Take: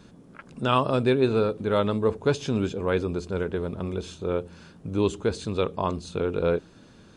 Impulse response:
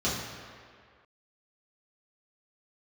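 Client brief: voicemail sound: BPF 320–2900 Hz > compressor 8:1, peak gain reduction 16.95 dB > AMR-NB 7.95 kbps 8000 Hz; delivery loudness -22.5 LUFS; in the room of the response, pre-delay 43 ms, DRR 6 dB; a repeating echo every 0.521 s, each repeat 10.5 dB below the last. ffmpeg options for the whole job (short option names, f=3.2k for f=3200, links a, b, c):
-filter_complex "[0:a]aecho=1:1:521|1042|1563:0.299|0.0896|0.0269,asplit=2[a][b];[1:a]atrim=start_sample=2205,adelay=43[c];[b][c]afir=irnorm=-1:irlink=0,volume=-16.5dB[d];[a][d]amix=inputs=2:normalize=0,highpass=320,lowpass=2.9k,acompressor=threshold=-34dB:ratio=8,volume=16dB" -ar 8000 -c:a libopencore_amrnb -b:a 7950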